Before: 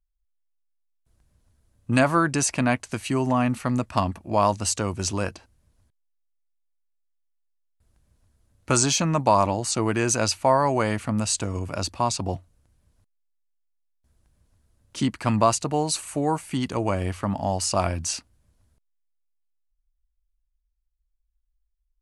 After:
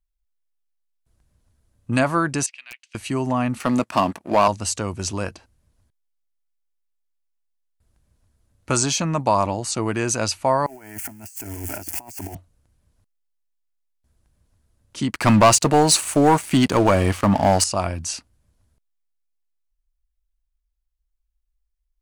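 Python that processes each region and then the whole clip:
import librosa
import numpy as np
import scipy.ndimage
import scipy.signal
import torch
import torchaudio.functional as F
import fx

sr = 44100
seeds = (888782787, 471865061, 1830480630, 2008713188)

y = fx.chain(x, sr, fx.ladder_bandpass(hz=3200.0, resonance_pct=50),
    fx.overflow_wrap(gain_db=26.0), at=(2.46, 2.95))
y = fx.chain(y, sr, fx.highpass(hz=220.0, slope=12),
    fx.leveller(passes=2), at=(3.6, 4.48))
y = fx.chain(y, sr, fx.crossing_spikes(level_db=-20.5),
    fx.over_compress(threshold_db=-30.0, ratio=-0.5),
    fx.fixed_phaser(hz=770.0, stages=8), at=(10.66, 12.35))
y = fx.chain(y, sr, fx.low_shelf(hz=95.0, db=-7.0),
    fx.leveller(passes=3), at=(15.11, 17.64))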